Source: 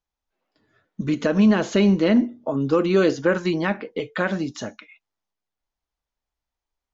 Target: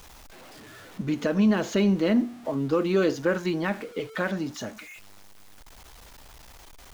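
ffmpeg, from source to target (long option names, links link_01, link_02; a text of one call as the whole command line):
ffmpeg -i in.wav -af "aeval=exprs='val(0)+0.5*0.0158*sgn(val(0))':channel_layout=same,volume=-5dB" out.wav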